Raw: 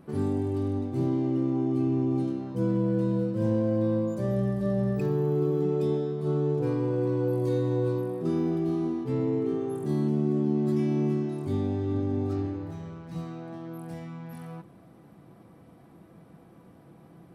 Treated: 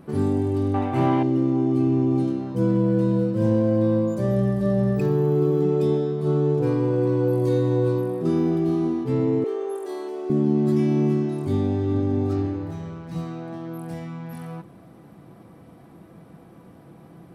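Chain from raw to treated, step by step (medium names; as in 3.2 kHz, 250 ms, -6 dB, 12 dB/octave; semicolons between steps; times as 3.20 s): 0.74–1.23 s: high-order bell 1.4 kHz +14 dB 2.6 oct; 9.44–10.30 s: elliptic high-pass 400 Hz, stop band 80 dB; trim +5.5 dB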